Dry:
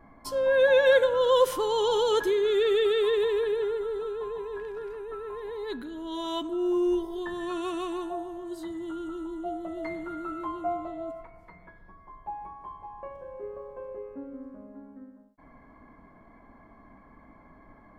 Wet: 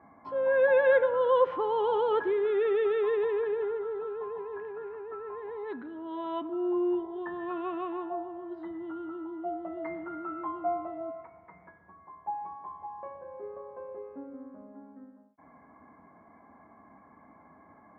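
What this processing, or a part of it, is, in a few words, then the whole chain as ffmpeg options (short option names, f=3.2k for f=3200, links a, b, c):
bass cabinet: -af "highpass=f=83:w=0.5412,highpass=f=83:w=1.3066,equalizer=f=120:t=q:w=4:g=-7,equalizer=f=790:t=q:w=4:g=6,equalizer=f=1.2k:t=q:w=4:g=3,lowpass=f=2.3k:w=0.5412,lowpass=f=2.3k:w=1.3066,volume=-3dB"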